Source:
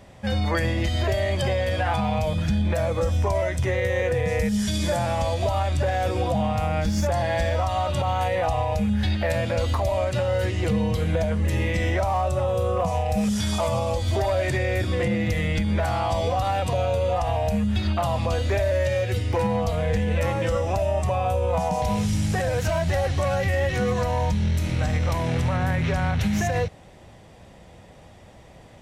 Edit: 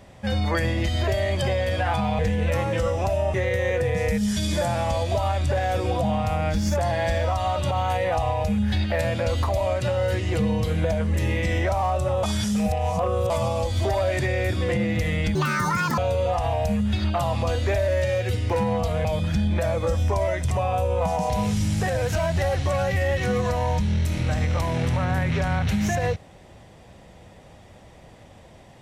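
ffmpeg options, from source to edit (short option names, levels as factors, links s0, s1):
-filter_complex "[0:a]asplit=9[s0][s1][s2][s3][s4][s5][s6][s7][s8];[s0]atrim=end=2.192[s9];[s1]atrim=start=19.878:end=21.032[s10];[s2]atrim=start=3.648:end=12.542[s11];[s3]atrim=start=12.538:end=13.612,asetpts=PTS-STARTPTS,areverse[s12];[s4]atrim=start=13.608:end=15.664[s13];[s5]atrim=start=15.66:end=16.81,asetpts=PTS-STARTPTS,asetrate=80703,aresample=44100,atrim=end_sample=27713,asetpts=PTS-STARTPTS[s14];[s6]atrim=start=16.806:end=19.882[s15];[s7]atrim=start=2.188:end=3.652[s16];[s8]atrim=start=21.028[s17];[s9][s10]acrossfade=d=0.004:c1=hsin:c2=hsin[s18];[s18][s11]acrossfade=d=0.004:c1=hsin:c2=hsin[s19];[s19][s12]acrossfade=d=0.004:c1=hsin:c2=hsin[s20];[s20][s13]acrossfade=d=0.004:c1=hsin:c2=hsin[s21];[s21][s14]acrossfade=d=0.004:c1=hsin:c2=hsin[s22];[s22][s15]acrossfade=d=0.004:c1=hsin:c2=hsin[s23];[s23][s16]acrossfade=d=0.004:c1=hsin:c2=hsin[s24];[s24][s17]acrossfade=d=0.004:c1=hsin:c2=hsin"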